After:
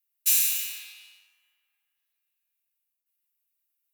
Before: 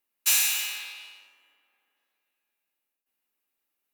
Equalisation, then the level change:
bass and treble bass +15 dB, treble −4 dB
first difference
low-shelf EQ 300 Hz −11.5 dB
+2.5 dB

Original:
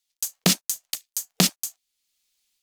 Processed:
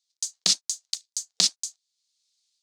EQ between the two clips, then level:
high-frequency loss of the air 150 metres
RIAA equalisation recording
flat-topped bell 6,100 Hz +12.5 dB
−11.0 dB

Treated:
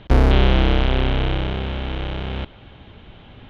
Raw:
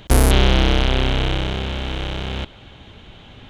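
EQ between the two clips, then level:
high-frequency loss of the air 250 metres
0.0 dB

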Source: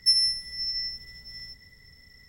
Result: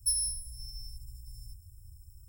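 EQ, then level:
Chebyshev band-stop filter 110–8,000 Hz, order 4
+8.0 dB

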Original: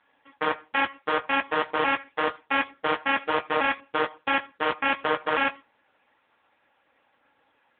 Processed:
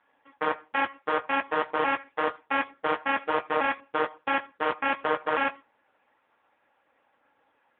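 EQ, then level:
low-pass filter 1,400 Hz 6 dB per octave
low-shelf EQ 300 Hz −6.5 dB
+1.5 dB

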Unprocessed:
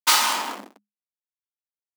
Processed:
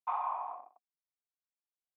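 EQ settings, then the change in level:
formant resonators in series a
band-pass filter 350–3,300 Hz
low-shelf EQ 490 Hz −8 dB
+2.5 dB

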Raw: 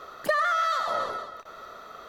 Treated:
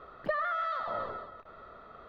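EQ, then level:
high-frequency loss of the air 360 metres
low-shelf EQ 180 Hz +10.5 dB
−5.5 dB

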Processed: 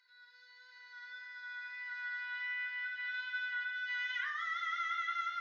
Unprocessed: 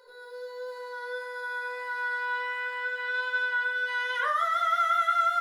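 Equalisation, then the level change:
four-pole ladder high-pass 1,700 Hz, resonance 50%
linear-phase brick-wall low-pass 6,800 Hz
0.0 dB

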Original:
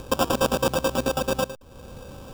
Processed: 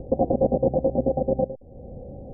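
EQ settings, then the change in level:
Chebyshev low-pass filter 760 Hz, order 6
+3.0 dB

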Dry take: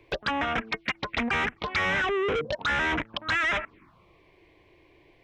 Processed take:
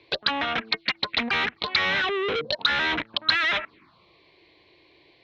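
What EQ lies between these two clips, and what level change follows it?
high-pass filter 160 Hz 6 dB per octave
low-pass with resonance 4,200 Hz, resonance Q 6.8
0.0 dB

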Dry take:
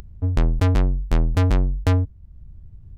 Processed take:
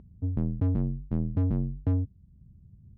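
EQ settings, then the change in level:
resonant band-pass 180 Hz, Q 1.6
high-frequency loss of the air 68 metres
0.0 dB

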